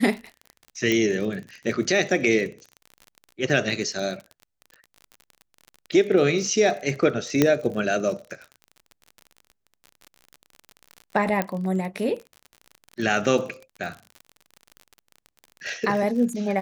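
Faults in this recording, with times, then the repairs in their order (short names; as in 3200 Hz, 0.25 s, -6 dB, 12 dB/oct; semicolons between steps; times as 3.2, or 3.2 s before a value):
crackle 39/s -32 dBFS
0.92 pop -10 dBFS
7.42 pop -4 dBFS
11.42 pop -10 dBFS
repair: de-click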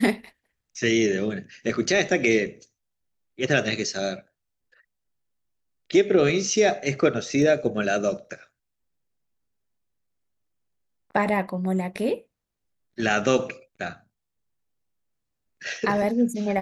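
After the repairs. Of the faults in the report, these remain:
7.42 pop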